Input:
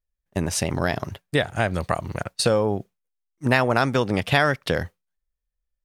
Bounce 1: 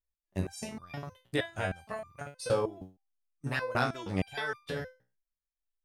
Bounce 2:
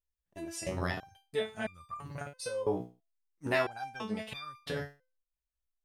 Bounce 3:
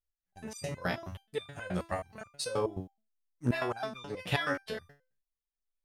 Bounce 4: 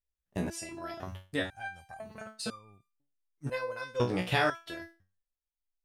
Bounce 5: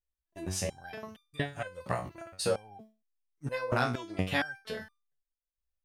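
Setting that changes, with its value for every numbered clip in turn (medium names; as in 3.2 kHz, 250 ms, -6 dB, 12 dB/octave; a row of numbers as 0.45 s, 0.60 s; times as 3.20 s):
resonator arpeggio, rate: 6.4 Hz, 3 Hz, 9.4 Hz, 2 Hz, 4.3 Hz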